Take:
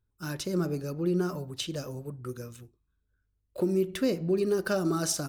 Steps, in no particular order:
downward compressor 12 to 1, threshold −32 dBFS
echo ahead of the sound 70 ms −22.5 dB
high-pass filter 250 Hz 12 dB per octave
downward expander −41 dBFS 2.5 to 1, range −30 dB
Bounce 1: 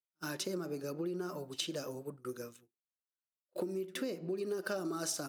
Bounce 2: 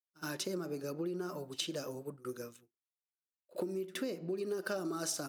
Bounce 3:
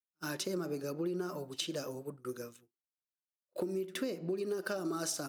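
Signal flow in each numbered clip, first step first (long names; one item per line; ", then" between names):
echo ahead of the sound, then downward compressor, then high-pass filter, then downward expander
downward compressor, then high-pass filter, then downward expander, then echo ahead of the sound
high-pass filter, then downward compressor, then echo ahead of the sound, then downward expander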